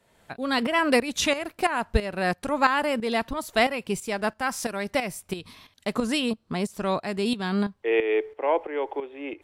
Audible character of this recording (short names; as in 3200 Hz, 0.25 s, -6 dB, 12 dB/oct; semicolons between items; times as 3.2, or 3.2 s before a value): tremolo saw up 3 Hz, depth 70%